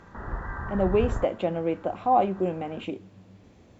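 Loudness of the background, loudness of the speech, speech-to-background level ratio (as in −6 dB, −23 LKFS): −34.5 LKFS, −27.0 LKFS, 7.5 dB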